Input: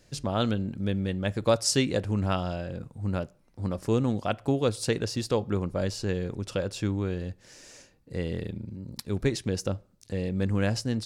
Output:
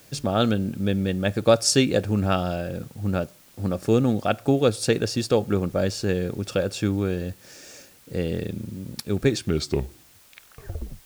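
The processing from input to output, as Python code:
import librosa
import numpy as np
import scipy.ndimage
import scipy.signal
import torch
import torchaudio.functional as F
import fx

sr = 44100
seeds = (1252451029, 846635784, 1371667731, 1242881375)

y = fx.tape_stop_end(x, sr, length_s=1.79)
y = fx.notch_comb(y, sr, f0_hz=1000.0)
y = fx.quant_dither(y, sr, seeds[0], bits=10, dither='triangular')
y = y * librosa.db_to_amplitude(6.0)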